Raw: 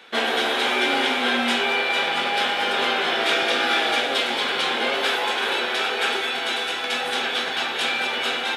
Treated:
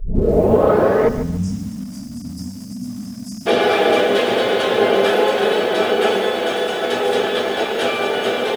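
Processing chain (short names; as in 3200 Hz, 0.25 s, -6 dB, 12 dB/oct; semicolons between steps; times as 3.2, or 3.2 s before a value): tape start at the beginning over 1.86 s; on a send: echo 1.009 s -10 dB; on the sum: upward compressor, threshold -26 dBFS; comb 4.7 ms, depth 84%; thinning echo 0.145 s, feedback 63%, high-pass 290 Hz, level -21 dB; harmoniser -12 st -4 dB; dynamic EQ 110 Hz, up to +3 dB, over -37 dBFS, Q 2.6; spectral delete 1.08–3.47, 290–4700 Hz; graphic EQ 125/500/1000/2000/4000/8000 Hz -7/+12/-6/-5/-5/-4 dB; lo-fi delay 0.144 s, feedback 35%, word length 6-bit, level -11 dB; gain +1.5 dB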